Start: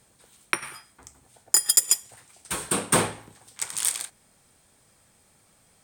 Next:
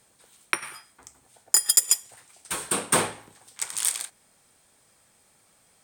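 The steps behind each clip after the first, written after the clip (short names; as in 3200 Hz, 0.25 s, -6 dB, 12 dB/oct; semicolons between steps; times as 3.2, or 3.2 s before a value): low shelf 230 Hz -8 dB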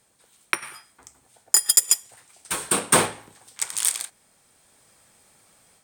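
AGC gain up to 6.5 dB; in parallel at -10.5 dB: sample gate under -20.5 dBFS; on the sum: gain -2.5 dB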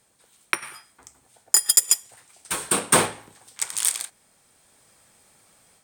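nothing audible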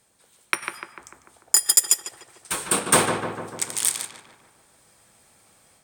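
darkening echo 0.148 s, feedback 63%, low-pass 2100 Hz, level -5 dB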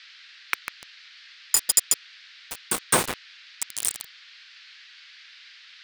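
sample gate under -17 dBFS; band noise 1500–4700 Hz -46 dBFS; gain -3 dB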